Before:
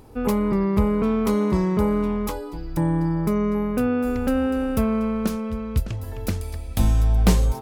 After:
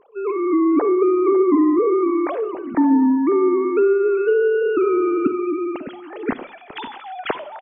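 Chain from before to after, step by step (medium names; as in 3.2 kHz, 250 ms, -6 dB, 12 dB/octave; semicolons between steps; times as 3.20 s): formants replaced by sine waves; level rider gain up to 8 dB; low-pass that closes with the level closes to 1.3 kHz, closed at -9 dBFS; echo from a far wall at 94 m, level -15 dB; on a send at -15.5 dB: reverberation RT60 0.55 s, pre-delay 45 ms; on the sum: trim -4 dB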